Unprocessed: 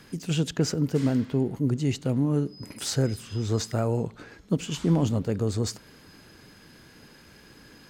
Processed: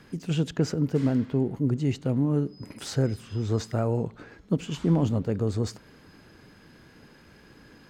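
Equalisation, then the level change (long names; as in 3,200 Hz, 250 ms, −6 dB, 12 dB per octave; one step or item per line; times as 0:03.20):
high-shelf EQ 3,600 Hz −9.5 dB
0.0 dB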